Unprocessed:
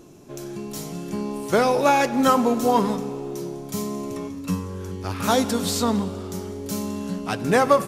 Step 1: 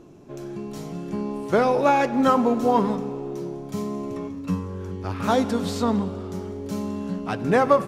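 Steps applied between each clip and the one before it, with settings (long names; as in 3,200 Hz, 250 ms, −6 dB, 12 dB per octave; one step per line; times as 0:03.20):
low-pass filter 2,000 Hz 6 dB per octave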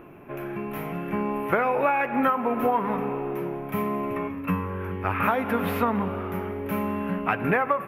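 drawn EQ curve 330 Hz 0 dB, 1,400 Hz +11 dB, 2,500 Hz +13 dB, 4,200 Hz −15 dB, 7,900 Hz −19 dB, 12,000 Hz +12 dB
downward compressor 16 to 1, threshold −19 dBFS, peak gain reduction 14.5 dB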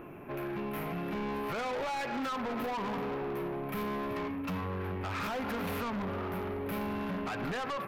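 brickwall limiter −17.5 dBFS, peak gain reduction 10.5 dB
soft clipping −32.5 dBFS, distortion −7 dB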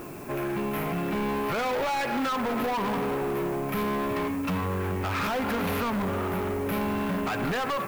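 background noise blue −58 dBFS
level +7 dB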